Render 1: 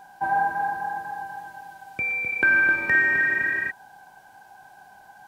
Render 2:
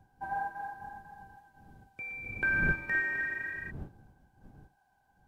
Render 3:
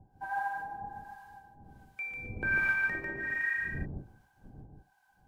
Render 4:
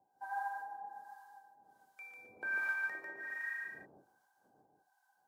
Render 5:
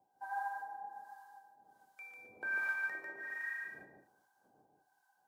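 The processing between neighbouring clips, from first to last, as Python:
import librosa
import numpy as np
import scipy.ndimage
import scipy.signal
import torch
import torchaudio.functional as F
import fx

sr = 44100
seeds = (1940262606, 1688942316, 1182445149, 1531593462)

y1 = fx.dmg_wind(x, sr, seeds[0], corner_hz=170.0, level_db=-34.0)
y1 = fx.upward_expand(y1, sr, threshold_db=-42.0, expansion=1.5)
y1 = F.gain(torch.from_numpy(y1), -9.0).numpy()
y2 = fx.harmonic_tremolo(y1, sr, hz=1.3, depth_pct=100, crossover_hz=810.0)
y2 = y2 + 10.0 ** (-3.5 / 20.0) * np.pad(y2, (int(147 * sr / 1000.0), 0))[:len(y2)]
y2 = F.gain(torch.from_numpy(y2), 5.0).numpy()
y3 = scipy.signal.sosfilt(scipy.signal.butter(2, 680.0, 'highpass', fs=sr, output='sos'), y2)
y3 = fx.peak_eq(y3, sr, hz=2500.0, db=-11.5, octaves=1.1)
y3 = F.gain(torch.from_numpy(y3), -2.0).numpy()
y4 = y3 + 10.0 ** (-19.0 / 20.0) * np.pad(y3, (int(218 * sr / 1000.0), 0))[:len(y3)]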